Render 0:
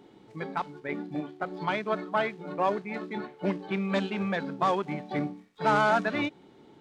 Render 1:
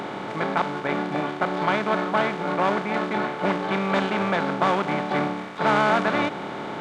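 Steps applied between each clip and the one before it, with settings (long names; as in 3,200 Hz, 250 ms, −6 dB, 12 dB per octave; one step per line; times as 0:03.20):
compressor on every frequency bin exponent 0.4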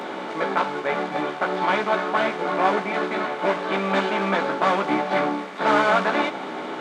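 high-pass filter 200 Hz 24 dB per octave
multi-voice chorus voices 6, 0.81 Hz, delay 14 ms, depth 2.1 ms
level +4.5 dB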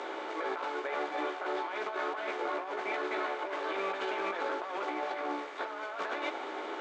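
elliptic band-pass filter 340–7,400 Hz, stop band 40 dB
compressor whose output falls as the input rises −26 dBFS, ratio −1
level −9 dB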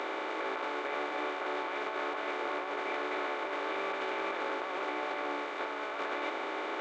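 compressor on every frequency bin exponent 0.4
level −5.5 dB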